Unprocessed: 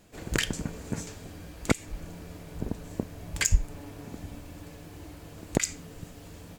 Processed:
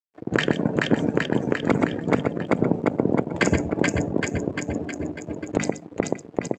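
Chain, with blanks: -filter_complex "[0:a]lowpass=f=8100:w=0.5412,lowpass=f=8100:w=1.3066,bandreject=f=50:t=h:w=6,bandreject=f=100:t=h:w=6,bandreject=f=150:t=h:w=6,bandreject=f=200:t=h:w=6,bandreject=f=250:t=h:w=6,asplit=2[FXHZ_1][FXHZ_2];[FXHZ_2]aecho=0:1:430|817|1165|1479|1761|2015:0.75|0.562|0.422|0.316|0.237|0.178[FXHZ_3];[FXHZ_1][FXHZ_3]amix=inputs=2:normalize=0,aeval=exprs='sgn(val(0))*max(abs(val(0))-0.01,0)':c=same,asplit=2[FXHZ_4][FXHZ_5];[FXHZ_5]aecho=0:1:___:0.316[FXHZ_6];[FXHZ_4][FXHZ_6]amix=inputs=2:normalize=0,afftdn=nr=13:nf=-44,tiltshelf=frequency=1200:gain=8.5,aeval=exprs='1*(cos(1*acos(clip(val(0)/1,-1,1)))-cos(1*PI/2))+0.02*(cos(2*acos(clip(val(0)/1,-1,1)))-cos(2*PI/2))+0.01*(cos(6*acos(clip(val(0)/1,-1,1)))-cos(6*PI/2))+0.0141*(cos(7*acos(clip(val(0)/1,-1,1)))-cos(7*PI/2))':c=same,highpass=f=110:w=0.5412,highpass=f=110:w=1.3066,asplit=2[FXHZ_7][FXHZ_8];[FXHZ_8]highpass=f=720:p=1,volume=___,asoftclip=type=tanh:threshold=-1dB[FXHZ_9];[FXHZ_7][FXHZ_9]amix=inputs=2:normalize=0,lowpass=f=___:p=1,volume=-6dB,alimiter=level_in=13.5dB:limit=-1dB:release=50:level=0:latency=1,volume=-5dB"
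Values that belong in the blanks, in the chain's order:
125, 13dB, 1700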